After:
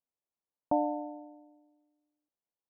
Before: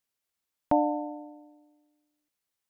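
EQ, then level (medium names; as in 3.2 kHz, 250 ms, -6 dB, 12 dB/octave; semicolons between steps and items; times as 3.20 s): low-pass 1 kHz 24 dB/octave; bass shelf 120 Hz -8.5 dB; -3.5 dB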